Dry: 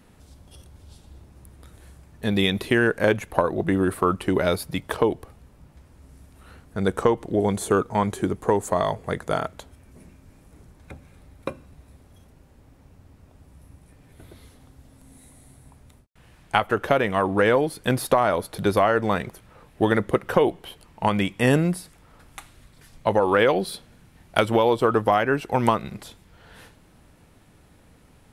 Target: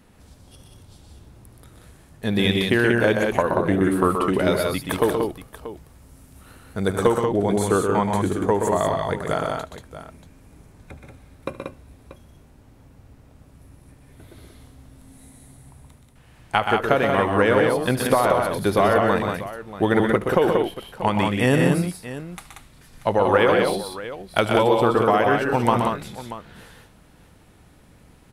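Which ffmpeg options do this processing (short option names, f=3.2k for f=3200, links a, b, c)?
-filter_complex "[0:a]asettb=1/sr,asplit=3[a][b][c];[a]atrim=end=4.814[d];[b]atrim=start=4.81:end=7.07,asetpts=PTS-STARTPTS,afade=t=in:d=0.004:c=qsin,afade=t=out:st=2.256:d=0.004:c=qsin,highshelf=f=7.5k:g=9.5[e];[c]atrim=start=7.066[f];[d][e]acrossfade=d=0.004:c1=hsin:c2=qsin[g];[g][f]acrossfade=d=0.004:c1=qsin:c2=hsin,aecho=1:1:74|125|143|184|635:0.141|0.501|0.224|0.596|0.188"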